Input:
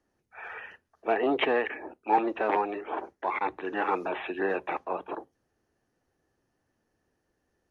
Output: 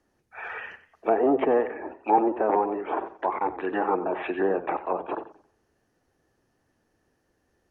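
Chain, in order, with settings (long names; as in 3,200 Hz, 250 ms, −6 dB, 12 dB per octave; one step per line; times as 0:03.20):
treble cut that deepens with the level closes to 920 Hz, closed at −26.5 dBFS
feedback echo with a swinging delay time 91 ms, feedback 32%, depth 110 cents, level −14 dB
level +5 dB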